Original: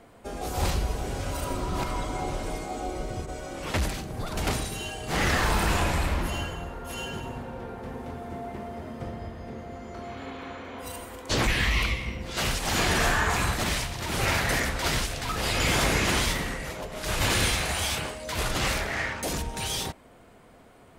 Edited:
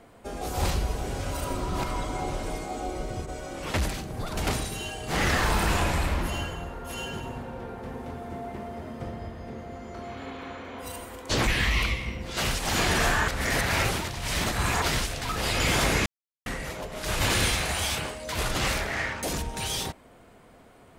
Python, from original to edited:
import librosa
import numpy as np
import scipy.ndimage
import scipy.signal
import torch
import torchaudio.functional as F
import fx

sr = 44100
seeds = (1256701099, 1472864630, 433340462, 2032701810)

y = fx.edit(x, sr, fx.reverse_span(start_s=13.28, length_s=1.54),
    fx.silence(start_s=16.06, length_s=0.4), tone=tone)